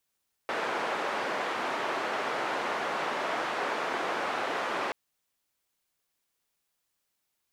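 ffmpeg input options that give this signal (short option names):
-f lavfi -i "anoisesrc=c=white:d=4.43:r=44100:seed=1,highpass=f=380,lowpass=f=1300,volume=-13.4dB"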